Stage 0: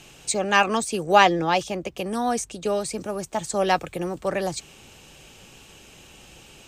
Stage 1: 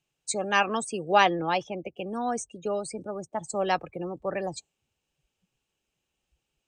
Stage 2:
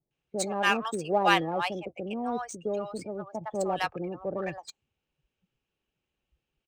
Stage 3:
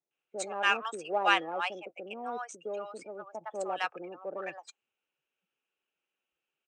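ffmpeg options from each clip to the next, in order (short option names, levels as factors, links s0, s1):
-af "afftdn=nr=29:nf=-33,lowshelf=f=190:g=-3,volume=0.596"
-filter_complex "[0:a]acrossover=split=780[s0][s1];[s1]adelay=110[s2];[s0][s2]amix=inputs=2:normalize=0,adynamicsmooth=sensitivity=6.5:basefreq=3900"
-af "highpass=400,equalizer=f=1400:t=q:w=4:g=6,equalizer=f=2600:t=q:w=4:g=5,equalizer=f=4500:t=q:w=4:g=-7,lowpass=f=8600:w=0.5412,lowpass=f=8600:w=1.3066,volume=0.631"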